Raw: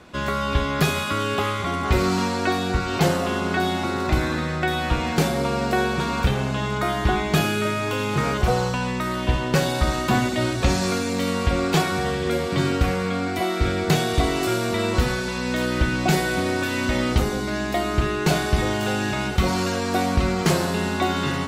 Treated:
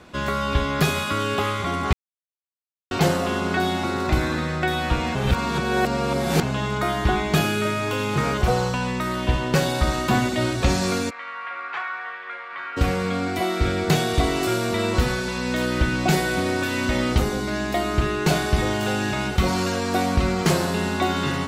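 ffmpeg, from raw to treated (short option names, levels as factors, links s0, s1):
-filter_complex "[0:a]asplit=3[s0][s1][s2];[s0]afade=t=out:st=11.09:d=0.02[s3];[s1]asuperpass=centerf=1500:order=4:qfactor=1.3,afade=t=in:st=11.09:d=0.02,afade=t=out:st=12.76:d=0.02[s4];[s2]afade=t=in:st=12.76:d=0.02[s5];[s3][s4][s5]amix=inputs=3:normalize=0,asplit=5[s6][s7][s8][s9][s10];[s6]atrim=end=1.93,asetpts=PTS-STARTPTS,afade=t=out:st=1.926:d=0.004:c=hsin[s11];[s7]atrim=start=1.93:end=2.91,asetpts=PTS-STARTPTS,volume=0[s12];[s8]atrim=start=2.91:end=5.152,asetpts=PTS-STARTPTS,afade=t=in:d=0.004:c=hsin[s13];[s9]atrim=start=5.148:end=6.432,asetpts=PTS-STARTPTS,areverse[s14];[s10]atrim=start=6.428[s15];[s11][s12][s13]concat=n=3:v=0:a=1[s16];[s16][s14]acrossfade=d=0.004:c1=hsin:c2=hsin[s17];[s17][s15]acrossfade=d=0.004:c1=hsin:c2=hsin"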